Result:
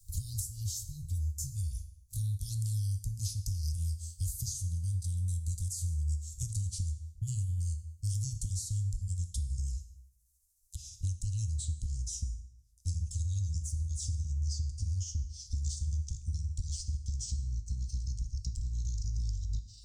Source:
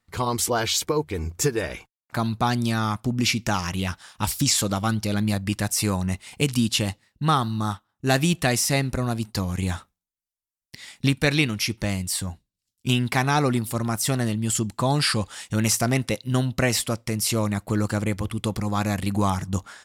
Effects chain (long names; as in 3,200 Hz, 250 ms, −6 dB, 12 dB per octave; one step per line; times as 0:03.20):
pitch glide at a constant tempo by −10.5 semitones starting unshifted
inverse Chebyshev band-stop filter 350–1,800 Hz, stop band 70 dB
low-shelf EQ 80 Hz +10.5 dB
downward compressor, threshold −32 dBFS, peak gain reduction 15 dB
dense smooth reverb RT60 0.63 s, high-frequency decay 0.85×, DRR 8 dB
multiband upward and downward compressor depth 70%